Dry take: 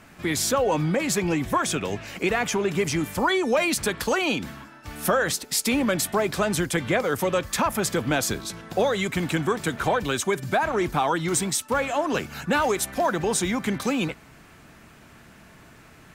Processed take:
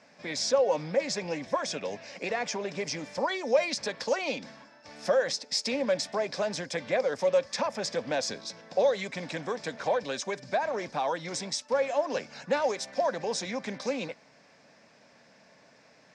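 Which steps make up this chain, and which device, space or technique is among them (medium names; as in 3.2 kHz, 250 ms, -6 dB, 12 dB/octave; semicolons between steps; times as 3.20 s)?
full-range speaker at full volume (loudspeaker Doppler distortion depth 0.13 ms; cabinet simulation 250–6500 Hz, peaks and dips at 350 Hz -10 dB, 550 Hz +9 dB, 1.3 kHz -9 dB, 3 kHz -6 dB, 5.2 kHz +9 dB); trim -6 dB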